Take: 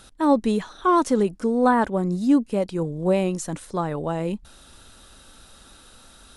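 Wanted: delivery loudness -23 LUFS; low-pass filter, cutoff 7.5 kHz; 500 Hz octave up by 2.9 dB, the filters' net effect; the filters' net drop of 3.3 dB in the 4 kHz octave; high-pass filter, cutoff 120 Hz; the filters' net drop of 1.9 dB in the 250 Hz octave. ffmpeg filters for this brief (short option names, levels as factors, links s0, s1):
-af "highpass=120,lowpass=7500,equalizer=f=250:t=o:g=-3.5,equalizer=f=500:t=o:g=4.5,equalizer=f=4000:t=o:g=-4,volume=0.891"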